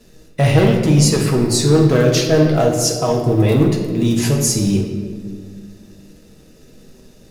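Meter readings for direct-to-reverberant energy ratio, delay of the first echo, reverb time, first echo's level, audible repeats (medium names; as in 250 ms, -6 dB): 0.0 dB, no echo, 1.9 s, no echo, no echo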